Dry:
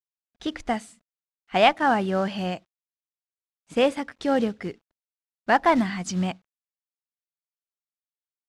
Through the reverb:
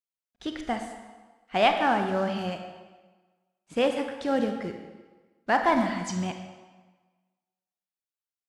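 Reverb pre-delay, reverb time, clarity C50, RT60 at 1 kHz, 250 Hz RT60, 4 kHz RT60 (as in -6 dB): 27 ms, 1.4 s, 6.5 dB, 1.3 s, 1.3 s, 1.1 s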